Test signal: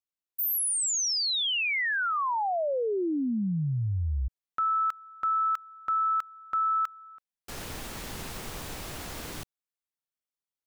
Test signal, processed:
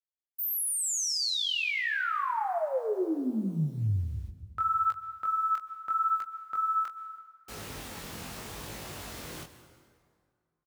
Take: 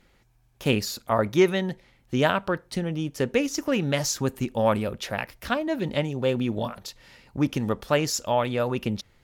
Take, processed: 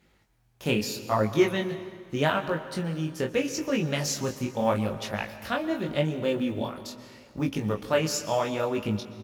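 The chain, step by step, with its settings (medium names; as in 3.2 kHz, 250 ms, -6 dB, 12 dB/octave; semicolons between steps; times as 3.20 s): high-pass 56 Hz 12 dB/octave; companded quantiser 8-bit; chorus 0.8 Hz, delay 18.5 ms, depth 6.3 ms; doubling 19 ms -9.5 dB; plate-style reverb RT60 2 s, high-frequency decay 0.7×, pre-delay 110 ms, DRR 12 dB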